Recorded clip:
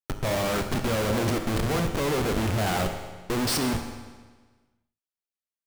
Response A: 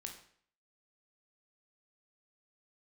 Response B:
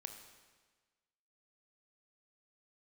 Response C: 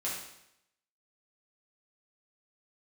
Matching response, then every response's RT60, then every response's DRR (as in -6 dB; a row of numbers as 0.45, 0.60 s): B; 0.55, 1.4, 0.80 s; 2.0, 5.0, -7.0 dB